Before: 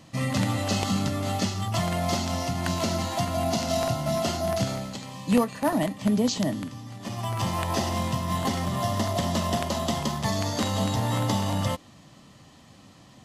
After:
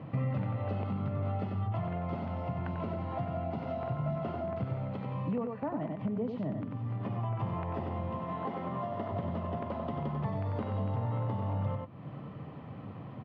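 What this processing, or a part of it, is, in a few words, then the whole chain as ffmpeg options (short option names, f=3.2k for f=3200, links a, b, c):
bass amplifier: -filter_complex "[0:a]asettb=1/sr,asplit=3[a][b][c];[a]atrim=end=8.104[d];[b]atrim=start=8.1:end=9.12,asetpts=PTS-STARTPTS,afade=t=in:d=0.004:c=qsin,afade=t=out:st=1.016:d=0.004:c=qsin,highpass=220[e];[c]atrim=start=9.116[f];[d][e]acrossfade=d=0.004:c1=hsin:c2=qsin[g];[g][f]acrossfade=d=0.004:c1=qsin:c2=hsin,asplit=2[h][i];[i]adelay=93.29,volume=-6dB,highshelf=f=4k:g=-2.1[j];[h][j]amix=inputs=2:normalize=0,acompressor=threshold=-40dB:ratio=5,highpass=84,equalizer=f=99:t=q:w=4:g=6,equalizer=f=140:t=q:w=4:g=7,equalizer=f=450:t=q:w=4:g=6,equalizer=f=1.8k:t=q:w=4:g=-7,lowpass=f=2.1k:w=0.5412,lowpass=f=2.1k:w=1.3066,volume=5dB"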